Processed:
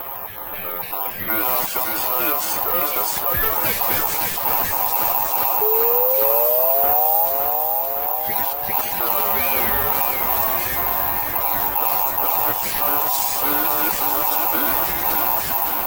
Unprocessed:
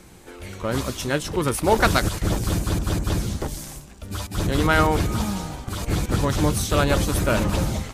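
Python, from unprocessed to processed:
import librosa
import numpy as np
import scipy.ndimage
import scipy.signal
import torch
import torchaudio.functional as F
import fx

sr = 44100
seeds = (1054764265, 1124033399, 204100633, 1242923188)

p1 = fx.spec_dropout(x, sr, seeds[0], share_pct=20)
p2 = fx.env_lowpass(p1, sr, base_hz=2400.0, full_db=-17.0)
p3 = fx.rider(p2, sr, range_db=10, speed_s=0.5)
p4 = p2 + (p3 * 10.0 ** (0.0 / 20.0))
p5 = p4 * np.sin(2.0 * np.pi * 880.0 * np.arange(len(p4)) / sr)
p6 = 10.0 ** (-17.0 / 20.0) * np.tanh(p5 / 10.0 ** (-17.0 / 20.0))
p7 = fx.stretch_vocoder_free(p6, sr, factor=2.0)
p8 = fx.spec_paint(p7, sr, seeds[1], shape='rise', start_s=5.61, length_s=1.65, low_hz=420.0, high_hz=840.0, level_db=-19.0)
p9 = p8 + fx.echo_feedback(p8, sr, ms=564, feedback_pct=52, wet_db=-8.0, dry=0)
p10 = (np.kron(p9[::3], np.eye(3)[0]) * 3)[:len(p9)]
p11 = fx.env_flatten(p10, sr, amount_pct=50)
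y = p11 * 10.0 ** (-4.5 / 20.0)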